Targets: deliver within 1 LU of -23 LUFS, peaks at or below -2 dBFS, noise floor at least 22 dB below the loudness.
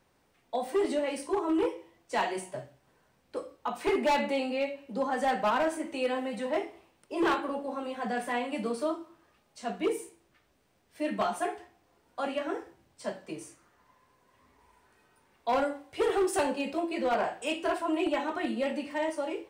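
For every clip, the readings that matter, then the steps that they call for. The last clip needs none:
clipped 1.4%; flat tops at -22.0 dBFS; loudness -31.5 LUFS; peak -22.0 dBFS; loudness target -23.0 LUFS
-> clip repair -22 dBFS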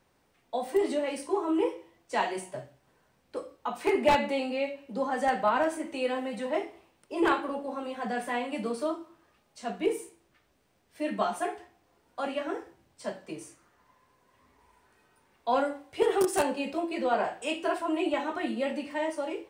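clipped 0.0%; loudness -30.5 LUFS; peak -13.0 dBFS; loudness target -23.0 LUFS
-> gain +7.5 dB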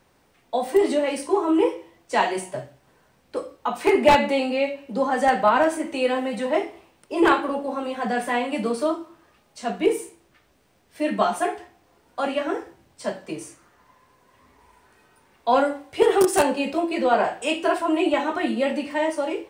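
loudness -23.0 LUFS; peak -5.5 dBFS; noise floor -62 dBFS

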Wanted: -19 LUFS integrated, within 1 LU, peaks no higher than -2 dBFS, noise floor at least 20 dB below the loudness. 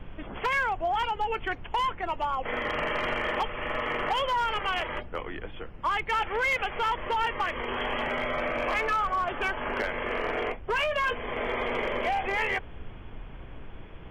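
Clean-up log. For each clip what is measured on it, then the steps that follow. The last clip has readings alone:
clipped 1.2%; flat tops at -21.5 dBFS; noise floor -43 dBFS; noise floor target -49 dBFS; loudness -29.0 LUFS; peak -21.5 dBFS; loudness target -19.0 LUFS
-> clip repair -21.5 dBFS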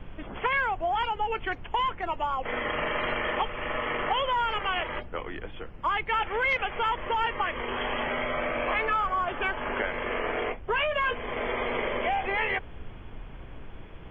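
clipped 0.0%; noise floor -43 dBFS; noise floor target -49 dBFS
-> noise print and reduce 6 dB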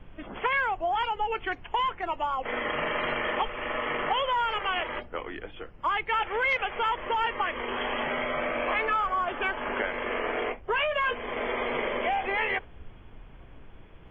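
noise floor -49 dBFS; loudness -28.5 LUFS; peak -14.5 dBFS; loudness target -19.0 LUFS
-> gain +9.5 dB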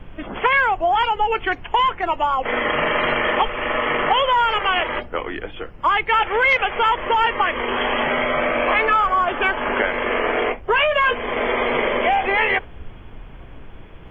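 loudness -19.0 LUFS; peak -5.0 dBFS; noise floor -39 dBFS

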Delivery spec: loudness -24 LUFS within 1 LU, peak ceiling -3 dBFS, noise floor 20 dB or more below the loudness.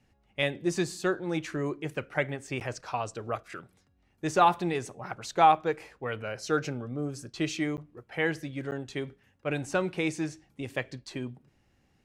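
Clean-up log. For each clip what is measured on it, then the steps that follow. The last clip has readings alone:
dropouts 3; longest dropout 9.6 ms; loudness -31.0 LUFS; peak -8.5 dBFS; loudness target -24.0 LUFS
-> interpolate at 2.6/7.77/8.71, 9.6 ms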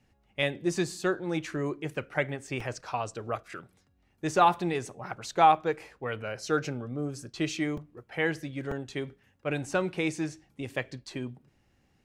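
dropouts 0; loudness -31.0 LUFS; peak -8.5 dBFS; loudness target -24.0 LUFS
-> gain +7 dB; limiter -3 dBFS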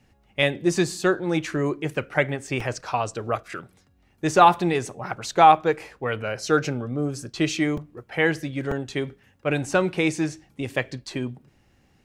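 loudness -24.0 LUFS; peak -3.0 dBFS; noise floor -62 dBFS

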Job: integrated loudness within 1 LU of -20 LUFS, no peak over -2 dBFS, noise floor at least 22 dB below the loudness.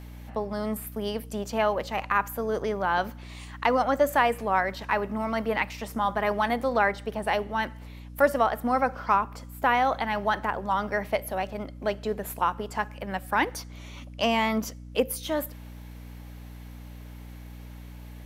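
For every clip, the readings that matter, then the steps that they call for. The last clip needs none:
hum 60 Hz; harmonics up to 300 Hz; hum level -40 dBFS; loudness -27.5 LUFS; peak -8.0 dBFS; loudness target -20.0 LUFS
-> de-hum 60 Hz, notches 5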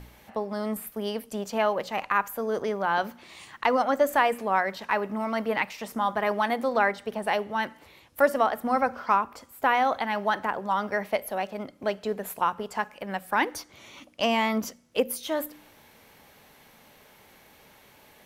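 hum none; loudness -27.5 LUFS; peak -8.0 dBFS; loudness target -20.0 LUFS
-> gain +7.5 dB; limiter -2 dBFS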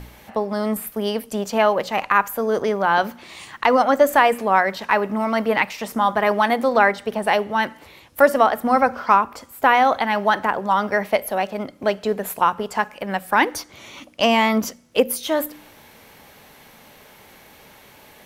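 loudness -20.0 LUFS; peak -2.0 dBFS; noise floor -49 dBFS

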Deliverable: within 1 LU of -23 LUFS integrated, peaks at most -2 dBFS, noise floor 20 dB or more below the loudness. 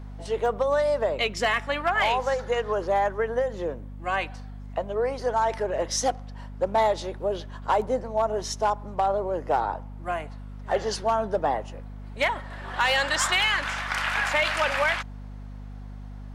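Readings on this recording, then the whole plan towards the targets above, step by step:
clipped 0.3%; flat tops at -15.0 dBFS; hum 50 Hz; harmonics up to 250 Hz; hum level -36 dBFS; loudness -26.0 LUFS; peak -15.0 dBFS; loudness target -23.0 LUFS
-> clip repair -15 dBFS; de-hum 50 Hz, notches 5; gain +3 dB

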